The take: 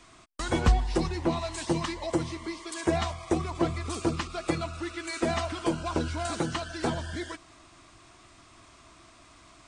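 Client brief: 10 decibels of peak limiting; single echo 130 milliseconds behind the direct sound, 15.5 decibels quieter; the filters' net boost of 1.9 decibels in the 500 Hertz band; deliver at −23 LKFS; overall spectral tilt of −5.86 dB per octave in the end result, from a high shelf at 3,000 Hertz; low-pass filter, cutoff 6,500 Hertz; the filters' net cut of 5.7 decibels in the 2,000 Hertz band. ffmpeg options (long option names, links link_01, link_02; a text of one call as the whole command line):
ffmpeg -i in.wav -af "lowpass=6500,equalizer=frequency=500:width_type=o:gain=3.5,equalizer=frequency=2000:width_type=o:gain=-5.5,highshelf=frequency=3000:gain=-6,alimiter=limit=-21.5dB:level=0:latency=1,aecho=1:1:130:0.168,volume=10.5dB" out.wav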